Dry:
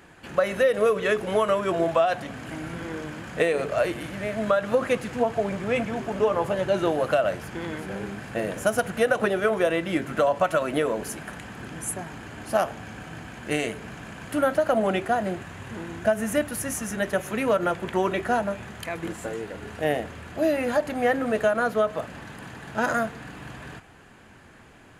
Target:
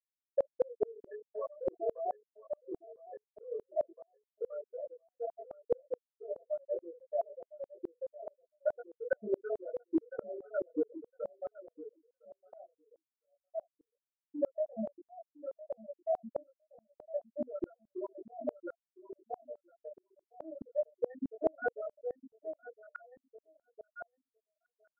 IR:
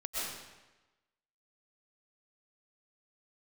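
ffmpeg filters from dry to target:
-filter_complex "[0:a]bandreject=frequency=48.12:width_type=h:width=4,bandreject=frequency=96.24:width_type=h:width=4,bandreject=frequency=144.36:width_type=h:width=4,bandreject=frequency=192.48:width_type=h:width=4,bandreject=frequency=240.6:width_type=h:width=4,bandreject=frequency=288.72:width_type=h:width=4,bandreject=frequency=336.84:width_type=h:width=4,bandreject=frequency=384.96:width_type=h:width=4,bandreject=frequency=433.08:width_type=h:width=4,afftfilt=real='re*gte(hypot(re,im),0.562)':imag='im*gte(hypot(re,im),0.562)':win_size=1024:overlap=0.75,equalizer=frequency=250:width_type=o:width=1:gain=6,equalizer=frequency=500:width_type=o:width=1:gain=4,equalizer=frequency=1000:width_type=o:width=1:gain=-11,equalizer=frequency=2000:width_type=o:width=1:gain=4,equalizer=frequency=4000:width_type=o:width=1:gain=-6,equalizer=frequency=8000:width_type=o:width=1:gain=5,acompressor=threshold=-27dB:ratio=4,flanger=delay=16.5:depth=5.5:speed=0.46,asuperstop=centerf=3800:order=12:qfactor=1.3,asplit=2[link_01][link_02];[link_02]adelay=1009,lowpass=frequency=2100:poles=1,volume=-7.5dB,asplit=2[link_03][link_04];[link_04]adelay=1009,lowpass=frequency=2100:poles=1,volume=0.17,asplit=2[link_05][link_06];[link_06]adelay=1009,lowpass=frequency=2100:poles=1,volume=0.17[link_07];[link_03][link_05][link_07]amix=inputs=3:normalize=0[link_08];[link_01][link_08]amix=inputs=2:normalize=0,aeval=exprs='val(0)*pow(10,-35*if(lt(mod(-4.7*n/s,1),2*abs(-4.7)/1000),1-mod(-4.7*n/s,1)/(2*abs(-4.7)/1000),(mod(-4.7*n/s,1)-2*abs(-4.7)/1000)/(1-2*abs(-4.7)/1000))/20)':channel_layout=same,volume=6dB"

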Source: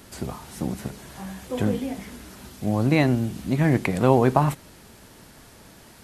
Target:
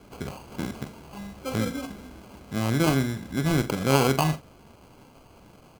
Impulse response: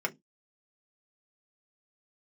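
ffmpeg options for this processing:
-filter_complex "[0:a]acrusher=samples=25:mix=1:aa=0.000001,asplit=2[link_01][link_02];[link_02]adelay=46,volume=-11dB[link_03];[link_01][link_03]amix=inputs=2:normalize=0,asetrate=45938,aresample=44100,volume=-3.5dB"

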